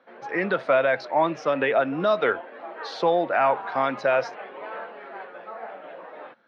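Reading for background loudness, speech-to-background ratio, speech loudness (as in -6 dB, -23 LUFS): -38.5 LUFS, 15.0 dB, -23.5 LUFS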